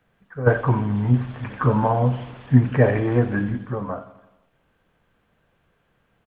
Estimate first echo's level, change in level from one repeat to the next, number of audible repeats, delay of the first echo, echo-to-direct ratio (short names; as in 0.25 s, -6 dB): -15.5 dB, -5.0 dB, 4, 86 ms, -14.0 dB